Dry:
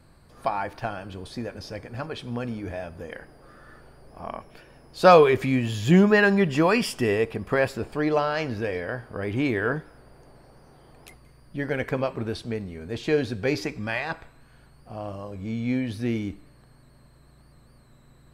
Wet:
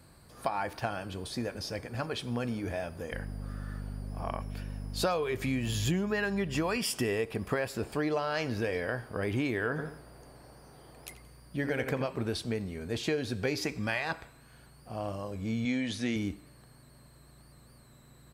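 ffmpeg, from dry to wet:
-filter_complex "[0:a]asettb=1/sr,asplit=3[a][b][c];[a]atrim=end=3.124[d];[b]atrim=start=3.12:end=6.77,asetpts=PTS-STARTPTS,afade=t=in:d=0.004:c=qsin,afade=t=out:st=3.646:d=0.004:c=qsin,aeval=exprs='val(0)+0.02*(sin(2*PI*50*n/s)+sin(2*PI*2*50*n/s)/2+sin(2*PI*3*50*n/s)/3+sin(2*PI*4*50*n/s)/4+sin(2*PI*5*50*n/s)/5)':c=same[e];[c]atrim=start=6.766[f];[d][e]acrossfade=d=0.004:c1=hsin:c2=qsin[g];[g][f]acrossfade=d=0.004:c1=qsin:c2=hsin,asplit=3[h][i][j];[h]afade=t=out:st=9.77:d=0.02[k];[i]asplit=2[l][m];[m]adelay=85,lowpass=f=2k:p=1,volume=-7dB,asplit=2[n][o];[o]adelay=85,lowpass=f=2k:p=1,volume=0.3,asplit=2[p][q];[q]adelay=85,lowpass=f=2k:p=1,volume=0.3,asplit=2[r][s];[s]adelay=85,lowpass=f=2k:p=1,volume=0.3[t];[l][n][p][r][t]amix=inputs=5:normalize=0,afade=t=in:st=9.77:d=0.02,afade=t=out:st=12.05:d=0.02[u];[j]afade=t=in:st=12.05:d=0.02[v];[k][u][v]amix=inputs=3:normalize=0,asettb=1/sr,asplit=3[w][x][y];[w]atrim=end=15.654[z];[x]atrim=start=15.65:end=16.16,asetpts=PTS-STARTPTS,afade=t=in:d=0.004:c=qsin,afade=t=out:st=0.506:d=0.004:c=qsin,highpass=110,equalizer=f=120:t=q:w=4:g=-6,equalizer=f=370:t=q:w=4:g=-5,equalizer=f=2k:t=q:w=4:g=5,equalizer=f=3.4k:t=q:w=4:g=7,equalizer=f=6.7k:t=q:w=4:g=8,lowpass=f=9.4k:w=0.5412,lowpass=f=9.4k:w=1.3066[aa];[y]atrim=start=16.156[ab];[z][aa]acrossfade=d=0.004:c1=hsin:c2=qsin[ac];[ac][ab]acrossfade=d=0.004:c1=qsin:c2=hsin,highpass=42,highshelf=f=5k:g=9,acompressor=threshold=-25dB:ratio=12,volume=-1.5dB"

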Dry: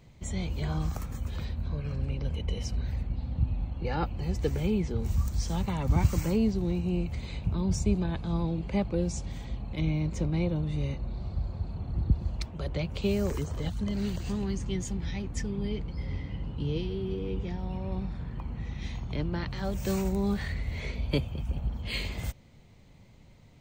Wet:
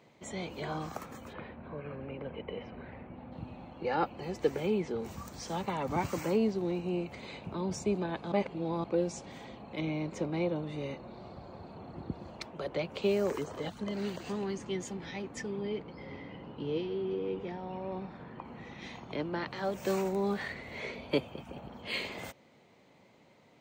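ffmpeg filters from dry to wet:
-filter_complex "[0:a]asplit=3[a][b][c];[a]afade=t=out:st=1.32:d=0.02[d];[b]lowpass=f=2.6k:w=0.5412,lowpass=f=2.6k:w=1.3066,afade=t=in:st=1.32:d=0.02,afade=t=out:st=3.31:d=0.02[e];[c]afade=t=in:st=3.31:d=0.02[f];[d][e][f]amix=inputs=3:normalize=0,asettb=1/sr,asplit=3[g][h][i];[g]atrim=end=15.614[j];[h]atrim=start=15.61:end=18.45,asetpts=PTS-STARTPTS,afade=t=in:d=0.004:c=qsin,afade=t=out:st=2.836:d=0.004:c=qsin,lowpass=f=3.8k:p=1[k];[i]atrim=start=18.446[l];[j][k]acrossfade=d=0.004:c1=hsin:c2=qsin[m];[m][l]acrossfade=d=0.004:c1=qsin:c2=hsin,asplit=3[n][o][p];[n]atrim=end=8.322[q];[o]atrim=start=8.318:end=8.842,asetpts=PTS-STARTPTS,areverse[r];[p]atrim=start=8.838[s];[q][r]acrossfade=d=0.004:c1=hsin:c2=hsin[t];[t][s]acrossfade=d=0.004:c1=hsin:c2=hsin,highpass=340,highshelf=f=3.1k:g=-10.5,volume=4dB"

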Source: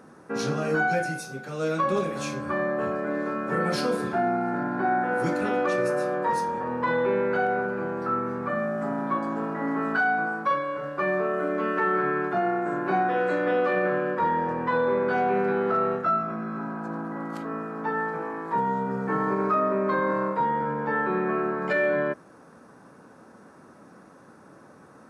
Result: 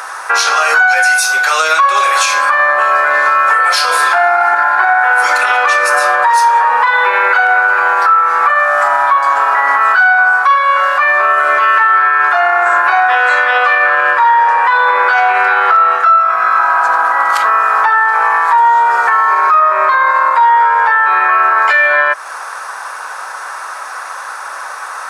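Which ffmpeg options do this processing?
-filter_complex "[0:a]asplit=3[a][b][c];[a]afade=t=out:st=4.4:d=0.02[d];[b]aphaser=in_gain=1:out_gain=1:delay=4.8:decay=0.22:speed=1.1:type=triangular,afade=t=in:st=4.4:d=0.02,afade=t=out:st=7.63:d=0.02[e];[c]afade=t=in:st=7.63:d=0.02[f];[d][e][f]amix=inputs=3:normalize=0,highpass=f=910:w=0.5412,highpass=f=910:w=1.3066,acompressor=threshold=-40dB:ratio=4,alimiter=level_in=33.5dB:limit=-1dB:release=50:level=0:latency=1,volume=-1dB"

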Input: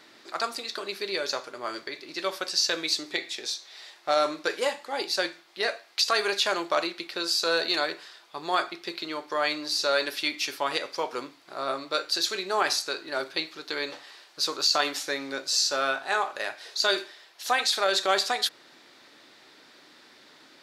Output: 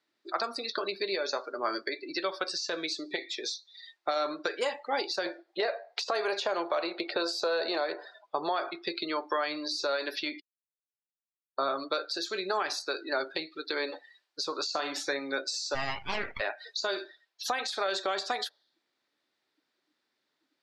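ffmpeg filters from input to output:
-filter_complex "[0:a]asettb=1/sr,asplit=3[a][b][c];[a]atrim=end=5.264[d];[b]atrim=start=5.26:end=8.71,asetpts=PTS-STARTPTS,afade=t=in:d=0.004:c=qsin,afade=t=out:st=3.446:d=0.004:c=qsin,equalizer=f=580:w=0.77:g=11.5[e];[c]atrim=start=8.706[f];[d][e]acrossfade=d=0.004:c1=hsin:c2=qsin[g];[g][f]acrossfade=d=0.004:c1=qsin:c2=hsin,asettb=1/sr,asplit=3[h][i][j];[h]atrim=end=14.654[k];[i]atrim=start=14.65:end=15.19,asetpts=PTS-STARTPTS,afade=t=in:d=0.004:c=qsin,afade=t=out:st=0.536:d=0.004:c=qsin,asplit=2[l][m];[m]adelay=36,volume=-8dB[n];[l][n]amix=inputs=2:normalize=0,atrim=end_sample=23814[o];[j]atrim=start=15.186[p];[k][o]acrossfade=d=0.004:c1=hsin:c2=qsin[q];[q][p]acrossfade=d=0.004:c1=qsin:c2=hsin,asplit=3[r][s][t];[r]afade=t=out:st=15.74:d=0.02[u];[s]aeval=exprs='abs(val(0))':c=same,afade=t=in:st=15.74:d=0.02,afade=t=out:st=16.39:d=0.02[v];[t]afade=t=in:st=16.39:d=0.02[w];[u][v][w]amix=inputs=3:normalize=0,asplit=3[x][y][z];[x]atrim=end=10.4,asetpts=PTS-STARTPTS,afade=t=out:st=10.396:d=0.004:c=hsin[aa];[y]atrim=start=10.4:end=11.58,asetpts=PTS-STARTPTS,volume=0[ab];[z]atrim=start=11.58,asetpts=PTS-STARTPTS,afade=t=in:d=0.004:c=hsin[ac];[aa][ab][ac]concat=n=3:v=0:a=1,afftdn=nr=33:nf=-39,alimiter=limit=-20dB:level=0:latency=1:release=334,acrossover=split=490|1300[ad][ae][af];[ad]acompressor=threshold=-45dB:ratio=4[ag];[ae]acompressor=threshold=-38dB:ratio=4[ah];[af]acompressor=threshold=-41dB:ratio=4[ai];[ag][ah][ai]amix=inputs=3:normalize=0,volume=6.5dB"

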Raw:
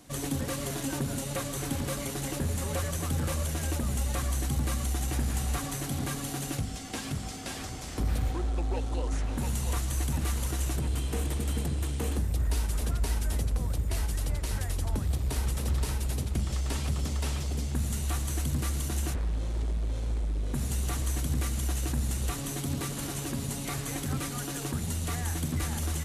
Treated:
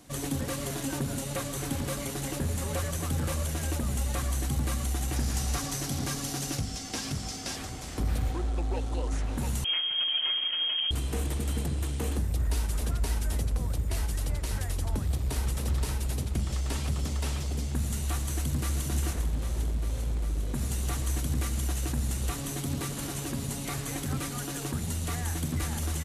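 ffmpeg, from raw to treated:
-filter_complex "[0:a]asettb=1/sr,asplit=3[a][b][c];[a]atrim=end=5.164[d];[b]atrim=start=5.16:end=7.56,asetpts=PTS-STARTPTS,afade=t=in:d=0.004:c=qsin,afade=t=out:st=2.396:d=0.004:c=qsin,equalizer=f=5.4k:w=2:g=8.5[e];[c]atrim=start=7.556[f];[d][e]acrossfade=d=0.004:c1=hsin:c2=qsin[g];[g][f]acrossfade=d=0.004:c1=qsin:c2=hsin,asettb=1/sr,asplit=3[h][i][j];[h]atrim=end=9.644[k];[i]atrim=start=9.64:end=10.91,asetpts=PTS-STARTPTS,afade=t=in:d=0.004:c=qsin,afade=t=out:st=1.266:d=0.004:c=qsin,lowpass=f=2.8k:t=q:w=0.5098,lowpass=f=2.8k:t=q:w=0.6013,lowpass=f=2.8k:t=q:w=0.9,lowpass=f=2.8k:t=q:w=2.563,afreqshift=-3300[l];[j]atrim=start=10.906[m];[k][l]acrossfade=d=0.004:c1=hsin:c2=qsin[n];[n][m]acrossfade=d=0.004:c1=qsin:c2=hsin,asplit=2[o][p];[p]afade=t=in:st=18.29:d=0.01,afade=t=out:st=18.84:d=0.01,aecho=0:1:400|800|1200|1600|2000|2400|2800|3200|3600|4000|4400|4800:0.398107|0.318486|0.254789|0.203831|0.163065|0.130452|0.104361|0.0834891|0.0667913|0.053433|0.0427464|0.0341971[q];[o][q]amix=inputs=2:normalize=0"

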